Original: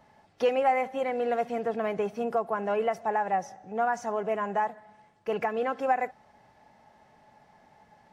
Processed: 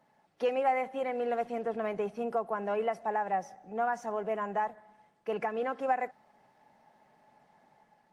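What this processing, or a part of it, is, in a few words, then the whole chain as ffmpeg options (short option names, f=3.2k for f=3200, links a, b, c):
video call: -af "highpass=f=140:w=0.5412,highpass=f=140:w=1.3066,dynaudnorm=f=170:g=5:m=3.5dB,volume=-7dB" -ar 48000 -c:a libopus -b:a 32k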